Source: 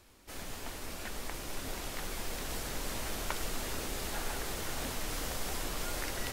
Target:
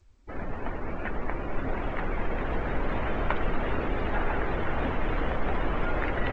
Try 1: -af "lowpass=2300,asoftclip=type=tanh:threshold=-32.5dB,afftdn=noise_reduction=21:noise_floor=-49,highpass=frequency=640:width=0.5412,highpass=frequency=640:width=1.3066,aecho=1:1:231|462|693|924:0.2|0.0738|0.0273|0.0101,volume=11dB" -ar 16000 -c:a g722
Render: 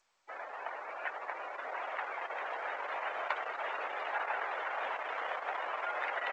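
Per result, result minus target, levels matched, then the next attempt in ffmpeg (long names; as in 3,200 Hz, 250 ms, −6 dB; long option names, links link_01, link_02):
soft clipping: distortion +13 dB; 500 Hz band −3.0 dB
-af "lowpass=2300,asoftclip=type=tanh:threshold=-23.5dB,afftdn=noise_reduction=21:noise_floor=-49,highpass=frequency=640:width=0.5412,highpass=frequency=640:width=1.3066,aecho=1:1:231|462|693|924:0.2|0.0738|0.0273|0.0101,volume=11dB" -ar 16000 -c:a g722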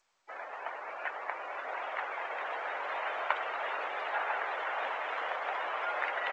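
500 Hz band −3.0 dB
-af "lowpass=2300,asoftclip=type=tanh:threshold=-23.5dB,afftdn=noise_reduction=21:noise_floor=-49,aecho=1:1:231|462|693|924:0.2|0.0738|0.0273|0.0101,volume=11dB" -ar 16000 -c:a g722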